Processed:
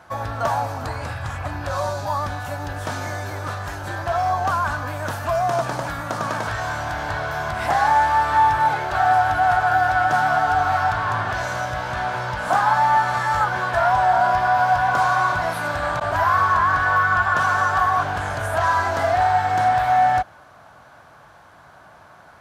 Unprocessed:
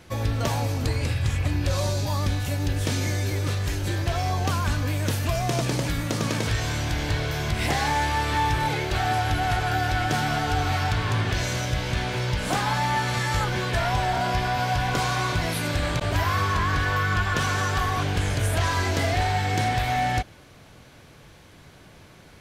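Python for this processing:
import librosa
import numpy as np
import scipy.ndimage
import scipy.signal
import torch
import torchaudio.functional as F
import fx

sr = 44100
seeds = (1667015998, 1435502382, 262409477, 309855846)

y = scipy.signal.sosfilt(scipy.signal.butter(2, 55.0, 'highpass', fs=sr, output='sos'), x)
y = fx.band_shelf(y, sr, hz=1000.0, db=15.0, octaves=1.7)
y = F.gain(torch.from_numpy(y), -5.5).numpy()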